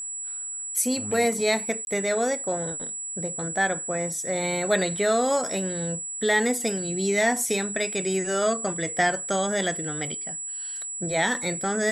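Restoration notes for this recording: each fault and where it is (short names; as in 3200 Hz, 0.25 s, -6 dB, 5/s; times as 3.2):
tone 7800 Hz -31 dBFS
1.85–1.87 gap 21 ms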